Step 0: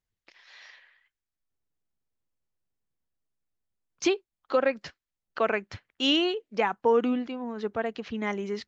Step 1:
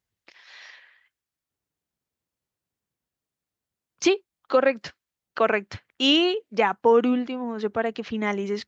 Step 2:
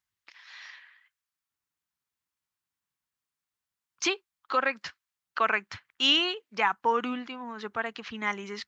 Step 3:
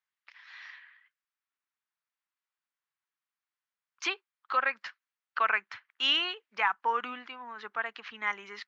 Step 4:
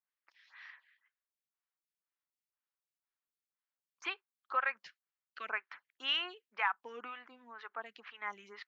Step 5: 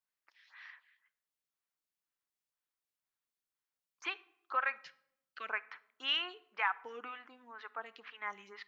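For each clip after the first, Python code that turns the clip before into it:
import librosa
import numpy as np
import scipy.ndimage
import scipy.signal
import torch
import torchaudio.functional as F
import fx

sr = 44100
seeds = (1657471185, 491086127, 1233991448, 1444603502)

y1 = scipy.signal.sosfilt(scipy.signal.butter(2, 65.0, 'highpass', fs=sr, output='sos'), x)
y1 = y1 * 10.0 ** (4.5 / 20.0)
y2 = fx.low_shelf_res(y1, sr, hz=780.0, db=-9.0, q=1.5)
y2 = y2 * 10.0 ** (-1.5 / 20.0)
y3 = fx.bandpass_q(y2, sr, hz=1600.0, q=0.81)
y4 = fx.stagger_phaser(y3, sr, hz=2.0)
y4 = y4 * 10.0 ** (-4.5 / 20.0)
y5 = fx.room_shoebox(y4, sr, seeds[0], volume_m3=2200.0, walls='furnished', distance_m=0.46)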